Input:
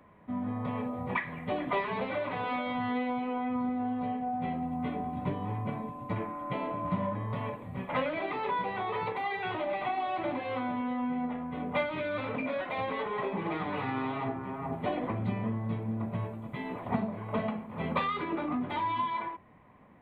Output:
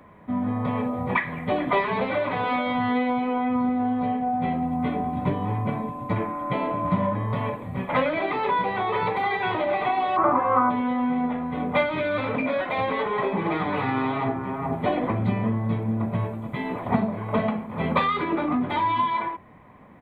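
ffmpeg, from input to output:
ffmpeg -i in.wav -filter_complex "[0:a]asplit=2[link_01][link_02];[link_02]afade=type=in:start_time=8.47:duration=0.01,afade=type=out:start_time=8.91:duration=0.01,aecho=0:1:460|920|1380|1840|2300|2760|3220|3680|4140|4600|5060:0.421697|0.295188|0.206631|0.144642|0.101249|0.0708745|0.0496122|0.0347285|0.02431|0.017017|0.0119119[link_03];[link_01][link_03]amix=inputs=2:normalize=0,asplit=3[link_04][link_05][link_06];[link_04]afade=type=out:start_time=10.16:duration=0.02[link_07];[link_05]lowpass=frequency=1200:width_type=q:width=7.5,afade=type=in:start_time=10.16:duration=0.02,afade=type=out:start_time=10.69:duration=0.02[link_08];[link_06]afade=type=in:start_time=10.69:duration=0.02[link_09];[link_07][link_08][link_09]amix=inputs=3:normalize=0,bandreject=frequency=2800:width=13,volume=8dB" out.wav

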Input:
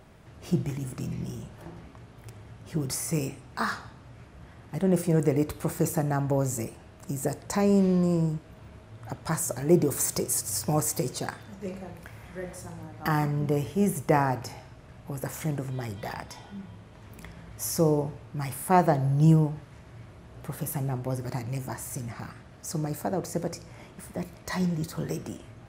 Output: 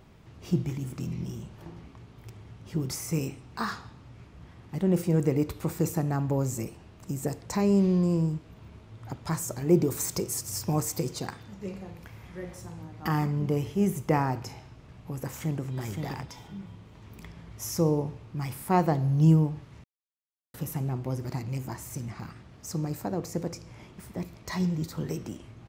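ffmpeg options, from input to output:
ffmpeg -i in.wav -filter_complex "[0:a]asplit=2[link_01][link_02];[link_02]afade=type=in:start_time=15.25:duration=0.01,afade=type=out:start_time=15.73:duration=0.01,aecho=0:1:520|1040|1560:0.562341|0.0843512|0.0126527[link_03];[link_01][link_03]amix=inputs=2:normalize=0,asplit=3[link_04][link_05][link_06];[link_04]atrim=end=19.84,asetpts=PTS-STARTPTS,afade=type=out:start_time=19.836:duration=0.004:curve=hsin[link_07];[link_05]atrim=start=19.84:end=20.54,asetpts=PTS-STARTPTS,volume=0[link_08];[link_06]atrim=start=20.54,asetpts=PTS-STARTPTS,afade=type=in:duration=0.004:curve=hsin[link_09];[link_07][link_08][link_09]concat=n=3:v=0:a=1,equalizer=frequency=630:width_type=o:width=0.67:gain=-6,equalizer=frequency=1600:width_type=o:width=0.67:gain=-5,equalizer=frequency=10000:width_type=o:width=0.67:gain=-8" out.wav

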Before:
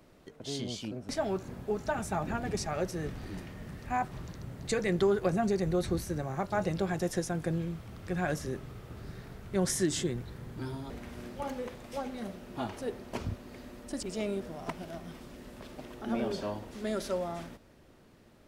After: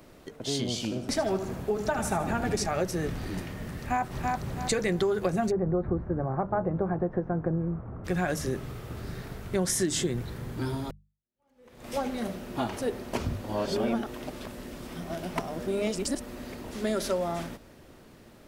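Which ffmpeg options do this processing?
ffmpeg -i in.wav -filter_complex "[0:a]asettb=1/sr,asplit=3[link_01][link_02][link_03];[link_01]atrim=end=0.684[link_04];[link_02]atrim=start=0.68:end=2.66,asetpts=PTS-STARTPTS,afade=type=in:duration=0.004:curve=qsin,afade=type=out:start_time=1.976:duration=0.004:curve=qsin,aecho=1:1:78|156|234|312|390:0.316|0.136|0.0585|0.0251|0.0108,atrim=end_sample=87318[link_05];[link_03]atrim=start=2.656[link_06];[link_04][link_05]acrossfade=duration=0.004:curve1=hsin:curve2=qsin[link_07];[link_07][link_06]acrossfade=duration=0.004:curve1=qsin:curve2=hsin,asplit=2[link_08][link_09];[link_09]afade=type=in:start_time=3.77:duration=0.01,afade=type=out:start_time=4.43:duration=0.01,aecho=0:1:330|660|990|1320:0.630957|0.189287|0.0567862|0.0170358[link_10];[link_08][link_10]amix=inputs=2:normalize=0,asplit=3[link_11][link_12][link_13];[link_11]afade=type=out:start_time=5.5:duration=0.02[link_14];[link_12]lowpass=frequency=1300:width=0.5412,lowpass=frequency=1300:width=1.3066,afade=type=in:start_time=5.5:duration=0.02,afade=type=out:start_time=8.04:duration=0.02[link_15];[link_13]afade=type=in:start_time=8.04:duration=0.02[link_16];[link_14][link_15][link_16]amix=inputs=3:normalize=0,asplit=4[link_17][link_18][link_19][link_20];[link_17]atrim=end=10.91,asetpts=PTS-STARTPTS,afade=type=out:start_time=10.906:duration=0.004:curve=hsin[link_21];[link_18]atrim=start=10.91:end=13.442,asetpts=PTS-STARTPTS,afade=type=in:duration=0.97:curve=exp[link_22];[link_19]atrim=start=13.438:end=16.642,asetpts=PTS-STARTPTS,areverse[link_23];[link_20]atrim=start=16.638[link_24];[link_21][link_22]concat=n=2:v=0:a=1[link_25];[link_25][link_23]acrossfade=duration=0.004:curve1=hsin:curve2=hsin[link_26];[link_26][link_24]acrossfade=duration=0.004:curve1=hsin:curve2=hsin,highshelf=frequency=9600:gain=4.5,bandreject=frequency=50:width_type=h:width=6,bandreject=frequency=100:width_type=h:width=6,bandreject=frequency=150:width_type=h:width=6,bandreject=frequency=200:width_type=h:width=6,acompressor=threshold=-31dB:ratio=4,volume=7dB" out.wav

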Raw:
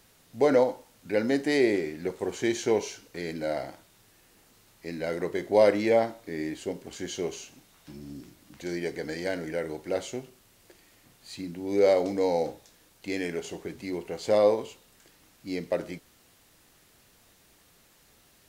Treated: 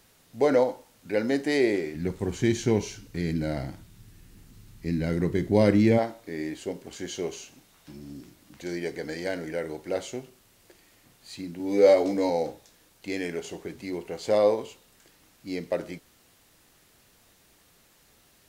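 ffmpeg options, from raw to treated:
ffmpeg -i in.wav -filter_complex "[0:a]asplit=3[link_01][link_02][link_03];[link_01]afade=type=out:start_time=1.94:duration=0.02[link_04];[link_02]asubboost=boost=10.5:cutoff=190,afade=type=in:start_time=1.94:duration=0.02,afade=type=out:start_time=5.97:duration=0.02[link_05];[link_03]afade=type=in:start_time=5.97:duration=0.02[link_06];[link_04][link_05][link_06]amix=inputs=3:normalize=0,asettb=1/sr,asplit=3[link_07][link_08][link_09];[link_07]atrim=end=11.584[link_10];[link_08]atrim=start=11.58:end=12.3,asetpts=PTS-STARTPTS,afade=type=in:duration=0.004:curve=qsin,afade=type=out:start_time=0.716:duration=0.004:curve=qsin,asplit=2[link_11][link_12];[link_12]adelay=14,volume=-2dB[link_13];[link_11][link_13]amix=inputs=2:normalize=0,atrim=end_sample=31752[link_14];[link_09]atrim=start=12.296[link_15];[link_10][link_14]acrossfade=duration=0.004:curve1=hsin:curve2=qsin[link_16];[link_16][link_15]acrossfade=duration=0.004:curve1=qsin:curve2=hsin" out.wav

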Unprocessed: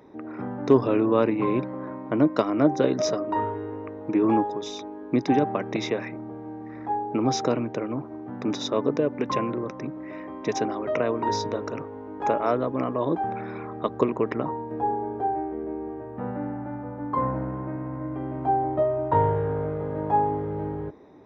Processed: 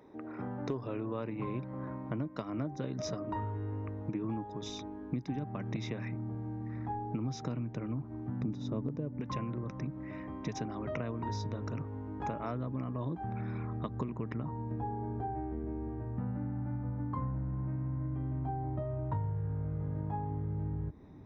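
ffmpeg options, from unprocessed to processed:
ffmpeg -i in.wav -filter_complex "[0:a]asplit=3[link_01][link_02][link_03];[link_01]afade=type=out:start_time=8.41:duration=0.02[link_04];[link_02]tiltshelf=frequency=800:gain=7.5,afade=type=in:start_time=8.41:duration=0.02,afade=type=out:start_time=9.2:duration=0.02[link_05];[link_03]afade=type=in:start_time=9.2:duration=0.02[link_06];[link_04][link_05][link_06]amix=inputs=3:normalize=0,asubboost=boost=9:cutoff=150,acompressor=threshold=-27dB:ratio=6,volume=-6dB" out.wav

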